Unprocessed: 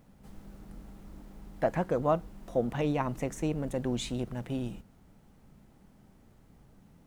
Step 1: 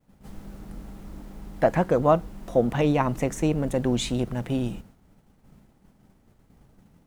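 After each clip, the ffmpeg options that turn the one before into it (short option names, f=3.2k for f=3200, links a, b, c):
-af "agate=range=-33dB:threshold=-51dB:ratio=3:detection=peak,volume=7.5dB"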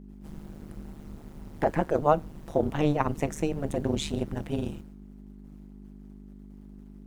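-af "aeval=exprs='val(0)+0.01*(sin(2*PI*50*n/s)+sin(2*PI*2*50*n/s)/2+sin(2*PI*3*50*n/s)/3+sin(2*PI*4*50*n/s)/4+sin(2*PI*5*50*n/s)/5)':c=same,tremolo=f=150:d=1"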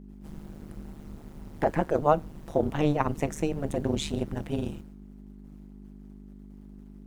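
-af anull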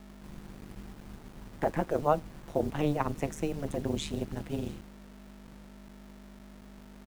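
-filter_complex "[0:a]acrossover=split=530|1100[a][b][c];[a]acrusher=bits=7:mix=0:aa=0.000001[d];[c]aecho=1:1:675:0.0668[e];[d][b][e]amix=inputs=3:normalize=0,volume=-4dB"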